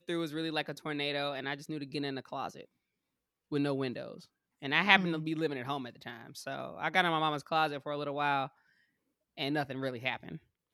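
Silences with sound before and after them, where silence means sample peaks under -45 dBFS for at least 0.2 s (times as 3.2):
2.65–3.52
4.23–4.62
8.47–9.38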